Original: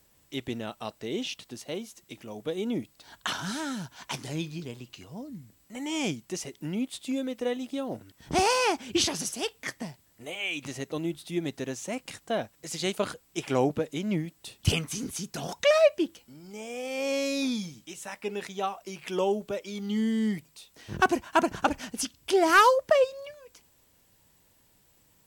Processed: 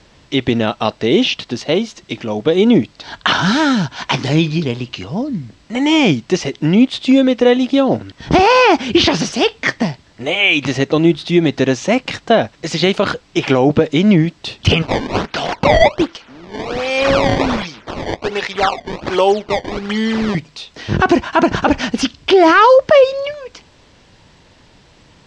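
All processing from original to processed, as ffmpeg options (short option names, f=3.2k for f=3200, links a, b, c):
-filter_complex "[0:a]asettb=1/sr,asplit=3[a][b][c];[a]atrim=end=14.824[d];[b]atrim=start=14.82:end=20.35,asetpts=PTS-STARTPTS,afade=t=in:d=0.004:c=qsin,afade=t=out:st=5.526:d=0.004:c=qsin,highpass=f=780:p=1,acrusher=samples=19:mix=1:aa=0.000001:lfo=1:lforange=30.4:lforate=1.3[e];[c]atrim=start=20.346[f];[d][e]acrossfade=d=0.004:c1=hsin:c2=qsin[g];[g][f]acrossfade=d=0.004:c1=qsin:c2=hsin,lowpass=f=5.3k:w=0.5412,lowpass=f=5.3k:w=1.3066,acrossover=split=3800[h][i];[i]acompressor=threshold=-45dB:ratio=4:attack=1:release=60[j];[h][j]amix=inputs=2:normalize=0,alimiter=level_in=21dB:limit=-1dB:release=50:level=0:latency=1,volume=-1dB"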